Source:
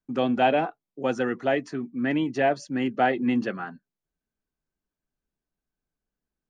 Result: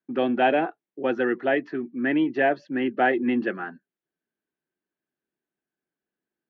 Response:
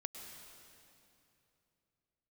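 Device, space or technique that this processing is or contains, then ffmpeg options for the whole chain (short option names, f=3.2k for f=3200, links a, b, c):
kitchen radio: -af "highpass=190,equalizer=f=350:t=q:w=4:g=8,equalizer=f=1.1k:t=q:w=4:g=-3,equalizer=f=1.7k:t=q:w=4:g=6,lowpass=f=3.5k:w=0.5412,lowpass=f=3.5k:w=1.3066"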